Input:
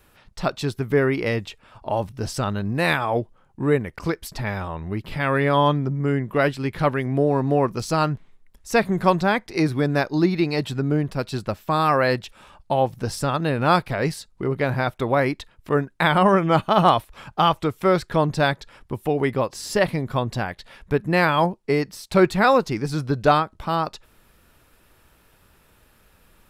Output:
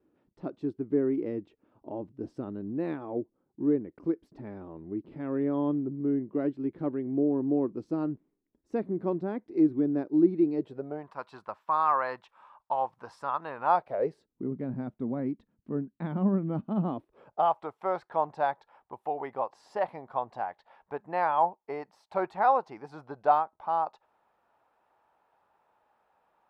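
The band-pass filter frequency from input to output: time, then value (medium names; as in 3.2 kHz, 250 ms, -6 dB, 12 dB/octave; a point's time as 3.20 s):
band-pass filter, Q 3.8
10.54 s 310 Hz
11.09 s 1 kHz
13.61 s 1 kHz
14.49 s 230 Hz
16.86 s 230 Hz
17.54 s 820 Hz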